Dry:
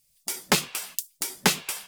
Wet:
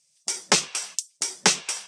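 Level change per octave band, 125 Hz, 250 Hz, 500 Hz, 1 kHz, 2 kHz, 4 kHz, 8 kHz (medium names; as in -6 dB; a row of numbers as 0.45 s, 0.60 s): -4.0 dB, -3.5 dB, +0.5 dB, +1.0 dB, +1.0 dB, +3.5 dB, +5.0 dB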